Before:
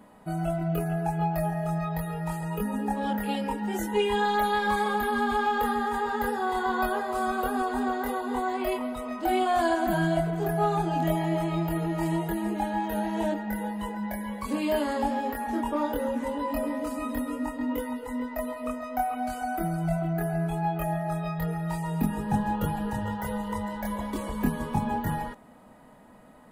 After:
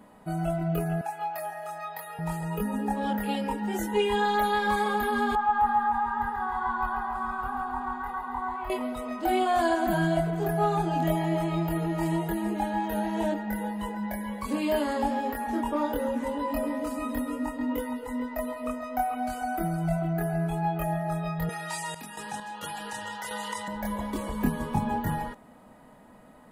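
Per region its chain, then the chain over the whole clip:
0:01.01–0:02.19: high-pass filter 820 Hz + double-tracking delay 37 ms −13.5 dB
0:05.35–0:08.70: drawn EQ curve 160 Hz 0 dB, 300 Hz −15 dB, 590 Hz −24 dB, 860 Hz +4 dB, 3,000 Hz −14 dB, 5,500 Hz −19 dB + repeating echo 138 ms, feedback 54%, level −5.5 dB
0:21.49–0:23.68: meter weighting curve ITU-R 468 + sample-and-hold tremolo 4.4 Hz, depth 85% + envelope flattener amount 50%
whole clip: no processing

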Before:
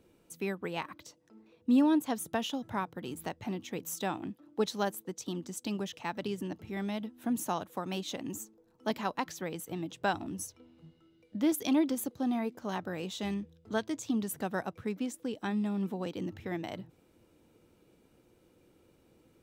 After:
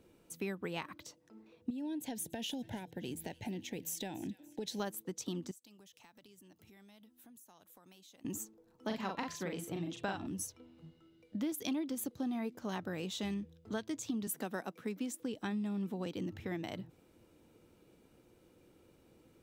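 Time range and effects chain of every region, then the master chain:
0:01.70–0:04.80: downward compressor 8 to 1, threshold −34 dBFS + Butterworth band-reject 1,200 Hz, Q 1.7 + delay with a high-pass on its return 287 ms, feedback 42%, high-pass 1,700 Hz, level −18.5 dB
0:05.51–0:08.25: first-order pre-emphasis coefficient 0.8 + downward compressor 10 to 1, threshold −56 dBFS
0:08.87–0:10.27: high-shelf EQ 10,000 Hz −11.5 dB + double-tracking delay 41 ms −3 dB + hum removal 341.3 Hz, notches 13
0:14.27–0:15.20: high-pass filter 190 Hz 24 dB per octave + high-shelf EQ 9,100 Hz +5 dB
whole clip: dynamic equaliser 820 Hz, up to −4 dB, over −46 dBFS, Q 0.72; downward compressor 5 to 1, threshold −34 dBFS

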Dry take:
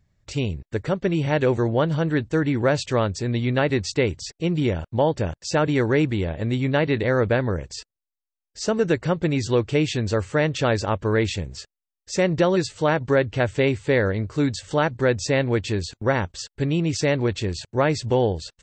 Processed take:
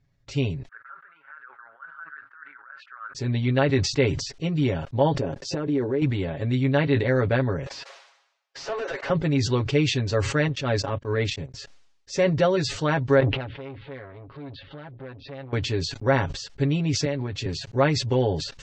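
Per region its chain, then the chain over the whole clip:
0:00.68–0:03.15: compressor whose output falls as the input rises −22 dBFS, ratio −0.5 + flat-topped band-pass 1,400 Hz, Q 4.2
0:05.19–0:06.02: parametric band 370 Hz +14 dB 2.2 octaves + downward compressor 10 to 1, threshold −21 dBFS
0:07.66–0:09.10: inverse Chebyshev high-pass filter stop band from 190 Hz, stop band 50 dB + downward compressor 2 to 1, threshold −45 dBFS + mid-hump overdrive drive 33 dB, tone 1,400 Hz, clips at −18 dBFS
0:10.48–0:11.54: transient designer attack −11 dB, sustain −4 dB + noise gate −31 dBFS, range −42 dB
0:13.20–0:15.53: Butterworth low-pass 3,900 Hz 48 dB per octave + downward compressor 5 to 1, threshold −34 dBFS + saturating transformer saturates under 830 Hz
0:17.05–0:17.46: downward compressor 4 to 1, threshold −23 dBFS + multiband upward and downward expander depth 70%
whole clip: low-pass filter 6,300 Hz 24 dB per octave; comb filter 7.3 ms, depth 76%; level that may fall only so fast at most 68 dB per second; level −4 dB

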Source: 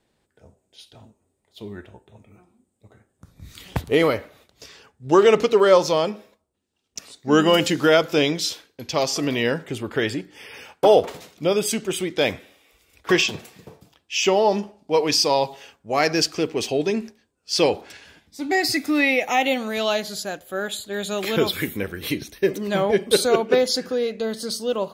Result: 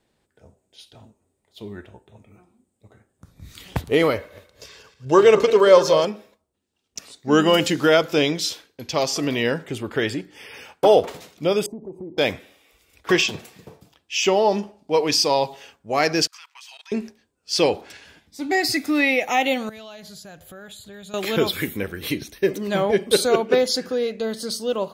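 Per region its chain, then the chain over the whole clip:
0:04.16–0:06.05: feedback delay that plays each chunk backwards 112 ms, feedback 51%, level −12 dB + comb filter 1.9 ms, depth 35%
0:11.66–0:12.18: elliptic low-pass filter 940 Hz + downward compressor, threshold −31 dBFS
0:16.27–0:16.92: Chebyshev high-pass filter 930 Hz, order 5 + output level in coarse steps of 22 dB
0:19.69–0:21.14: low shelf with overshoot 190 Hz +10 dB, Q 1.5 + downward compressor 5 to 1, threshold −39 dBFS
whole clip: no processing

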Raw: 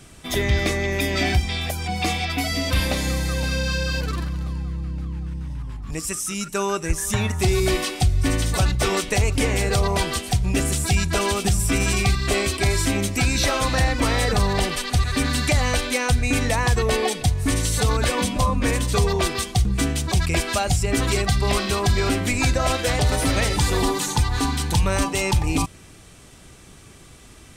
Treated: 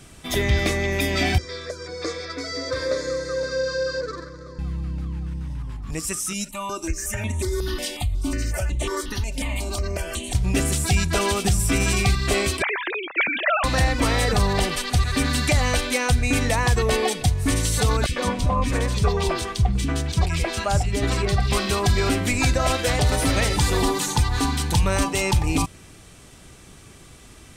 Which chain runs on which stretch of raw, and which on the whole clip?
0:01.38–0:04.59: loudspeaker in its box 170–6,500 Hz, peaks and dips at 510 Hz +10 dB, 780 Hz −7 dB, 2,400 Hz −4 dB, 4,600 Hz +3 dB + phaser with its sweep stopped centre 780 Hz, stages 6
0:06.33–0:10.35: comb filter 3.3 ms, depth 71% + downward compressor 3 to 1, threshold −21 dBFS + step-sequenced phaser 5.5 Hz 330–5,000 Hz
0:12.62–0:13.64: three sine waves on the formant tracks + resonant band-pass 2,000 Hz, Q 0.62
0:18.06–0:21.52: high-shelf EQ 7,500 Hz −11 dB + three-band delay without the direct sound highs, lows, mids 30/100 ms, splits 280/2,300 Hz
whole clip: no processing

